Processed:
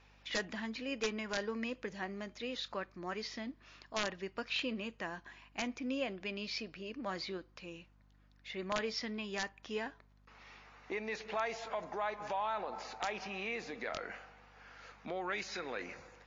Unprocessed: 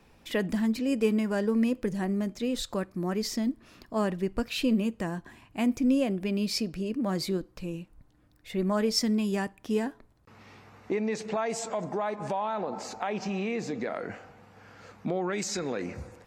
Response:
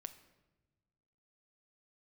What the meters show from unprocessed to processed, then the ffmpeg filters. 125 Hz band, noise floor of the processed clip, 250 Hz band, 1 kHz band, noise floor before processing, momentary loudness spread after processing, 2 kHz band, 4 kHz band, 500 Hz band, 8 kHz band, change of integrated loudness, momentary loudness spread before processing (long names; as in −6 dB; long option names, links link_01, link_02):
−17.0 dB, −65 dBFS, −15.5 dB, −5.0 dB, −61 dBFS, 14 LU, −1.0 dB, −5.0 dB, −10.0 dB, −11.5 dB, −10.0 dB, 10 LU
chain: -filter_complex "[0:a]acrossover=split=4400[link_01][link_02];[link_02]acompressor=threshold=-54dB:ratio=12[link_03];[link_01][link_03]amix=inputs=2:normalize=0,bandpass=frequency=2500:width_type=q:width=0.53:csg=0,aeval=exprs='(mod(16.8*val(0)+1,2)-1)/16.8':channel_layout=same,aeval=exprs='val(0)+0.000631*(sin(2*PI*50*n/s)+sin(2*PI*2*50*n/s)/2+sin(2*PI*3*50*n/s)/3+sin(2*PI*4*50*n/s)/4+sin(2*PI*5*50*n/s)/5)':channel_layout=same" -ar 16000 -c:a libmp3lame -b:a 40k